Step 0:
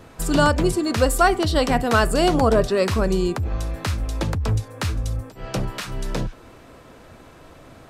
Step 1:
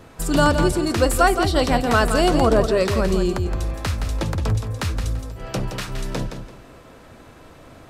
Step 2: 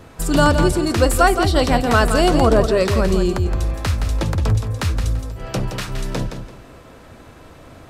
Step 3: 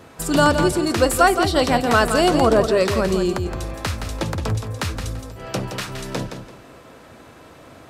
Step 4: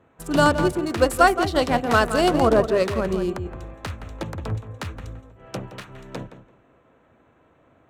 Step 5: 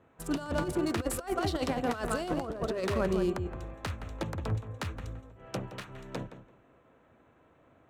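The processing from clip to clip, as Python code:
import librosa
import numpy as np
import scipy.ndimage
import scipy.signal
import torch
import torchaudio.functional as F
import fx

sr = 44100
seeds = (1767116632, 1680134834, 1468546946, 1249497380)

y1 = fx.echo_feedback(x, sr, ms=169, feedback_pct=25, wet_db=-8)
y2 = fx.peak_eq(y1, sr, hz=72.0, db=3.0, octaves=1.4)
y2 = y2 * 10.0 ** (2.0 / 20.0)
y3 = fx.highpass(y2, sr, hz=170.0, slope=6)
y4 = fx.wiener(y3, sr, points=9)
y4 = fx.upward_expand(y4, sr, threshold_db=-38.0, expansion=1.5)
y5 = fx.over_compress(y4, sr, threshold_db=-22.0, ratio=-0.5)
y5 = y5 * 10.0 ** (-7.5 / 20.0)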